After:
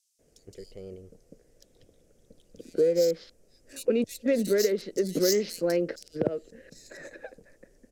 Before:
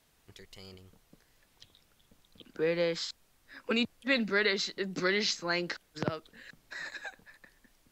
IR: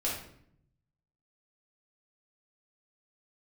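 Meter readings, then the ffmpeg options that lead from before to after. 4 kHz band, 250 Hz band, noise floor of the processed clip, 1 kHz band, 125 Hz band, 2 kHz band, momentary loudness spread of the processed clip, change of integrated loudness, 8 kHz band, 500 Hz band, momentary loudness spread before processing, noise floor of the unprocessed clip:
-4.0 dB, +5.0 dB, -65 dBFS, -6.5 dB, +2.5 dB, -9.5 dB, 21 LU, +4.5 dB, +8.0 dB, +8.5 dB, 18 LU, -69 dBFS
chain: -filter_complex "[0:a]lowshelf=f=710:t=q:w=3:g=11,adynamicsmooth=sensitivity=5:basefreq=4.2k,equalizer=f=100:w=0.46:g=-3.5,acompressor=threshold=-18dB:ratio=4,aexciter=amount=6.6:drive=6.6:freq=5.4k,acrossover=split=3400[a][b];[a]adelay=190[c];[c][b]amix=inputs=2:normalize=0,volume=-3dB"

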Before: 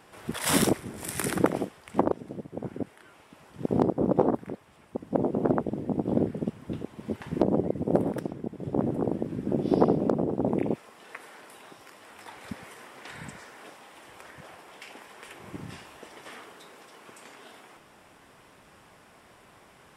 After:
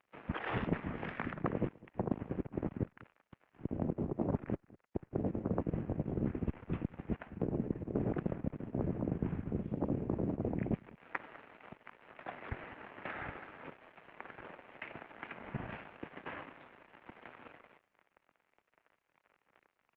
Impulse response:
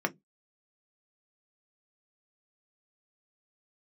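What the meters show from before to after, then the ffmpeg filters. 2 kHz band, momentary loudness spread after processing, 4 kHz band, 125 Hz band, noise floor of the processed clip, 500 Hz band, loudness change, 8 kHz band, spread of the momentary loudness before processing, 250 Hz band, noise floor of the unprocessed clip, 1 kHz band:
-5.5 dB, 17 LU, under -15 dB, -4.5 dB, -82 dBFS, -12.5 dB, -11.0 dB, n/a, 22 LU, -9.5 dB, -56 dBFS, -11.0 dB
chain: -af "aeval=exprs='sgn(val(0))*max(abs(val(0))-0.00398,0)':c=same,highpass=f=280:t=q:w=0.5412,highpass=f=280:t=q:w=1.307,lowpass=f=2.8k:t=q:w=0.5176,lowpass=f=2.8k:t=q:w=0.7071,lowpass=f=2.8k:t=q:w=1.932,afreqshift=-160,areverse,acompressor=threshold=-37dB:ratio=20,areverse,aecho=1:1:204:0.0891,volume=6.5dB" -ar 48000 -c:a libopus -b:a 32k

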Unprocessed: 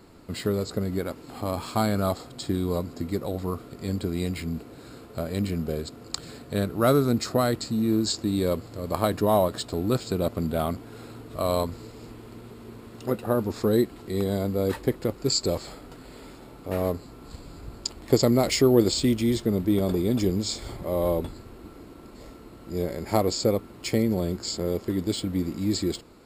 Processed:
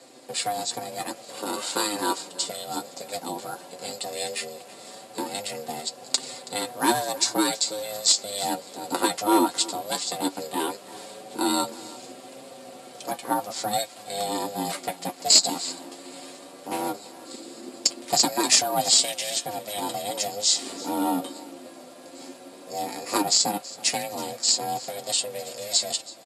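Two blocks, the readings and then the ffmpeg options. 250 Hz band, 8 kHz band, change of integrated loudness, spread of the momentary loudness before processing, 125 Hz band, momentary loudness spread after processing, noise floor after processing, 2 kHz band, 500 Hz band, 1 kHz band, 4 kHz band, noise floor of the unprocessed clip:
-6.0 dB, +12.0 dB, +1.0 dB, 22 LU, -18.0 dB, 20 LU, -46 dBFS, +4.5 dB, -6.0 dB, +5.5 dB, +8.5 dB, -46 dBFS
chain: -filter_complex "[0:a]aecho=1:1:4.7:0.53,acrossover=split=420|1000[a][b][c];[a]acompressor=threshold=-35dB:ratio=6[d];[d][b][c]amix=inputs=3:normalize=0,crystalizer=i=3:c=0,aeval=exprs='val(0)*sin(2*PI*310*n/s)':c=same,flanger=delay=7.6:depth=4.1:regen=39:speed=0.16:shape=triangular,aeval=exprs='clip(val(0),-1,0.126)':c=same,highpass=f=210:w=0.5412,highpass=f=210:w=1.3066,equalizer=f=260:t=q:w=4:g=3,equalizer=f=970:t=q:w=4:g=-3,equalizer=f=1.6k:t=q:w=4:g=-5,lowpass=f=9.8k:w=0.5412,lowpass=f=9.8k:w=1.3066,asplit=2[e][f];[f]aecho=0:1:326:0.106[g];[e][g]amix=inputs=2:normalize=0,volume=7.5dB"

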